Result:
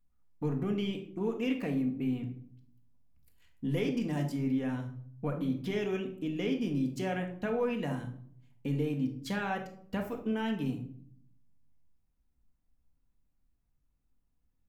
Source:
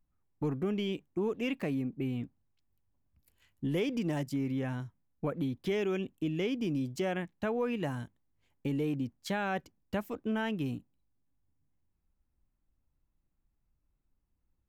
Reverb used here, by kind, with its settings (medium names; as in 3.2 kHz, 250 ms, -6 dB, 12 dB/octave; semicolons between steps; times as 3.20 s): simulated room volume 880 m³, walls furnished, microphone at 1.8 m; trim -2.5 dB